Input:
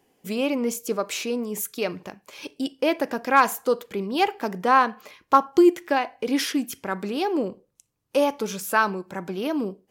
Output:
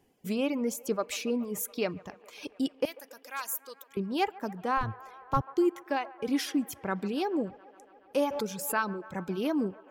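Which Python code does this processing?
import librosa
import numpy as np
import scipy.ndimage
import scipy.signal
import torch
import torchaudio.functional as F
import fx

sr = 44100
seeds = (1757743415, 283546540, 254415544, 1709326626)

y = fx.octave_divider(x, sr, octaves=1, level_db=3.0, at=(4.77, 5.41))
y = fx.dereverb_blind(y, sr, rt60_s=0.98)
y = fx.differentiator(y, sr, at=(2.85, 3.97))
y = fx.rider(y, sr, range_db=4, speed_s=0.5)
y = fx.low_shelf(y, sr, hz=180.0, db=11.0)
y = fx.echo_wet_bandpass(y, sr, ms=141, feedback_pct=80, hz=1000.0, wet_db=-19.0)
y = fx.pre_swell(y, sr, db_per_s=53.0, at=(8.23, 8.75))
y = y * 10.0 ** (-8.0 / 20.0)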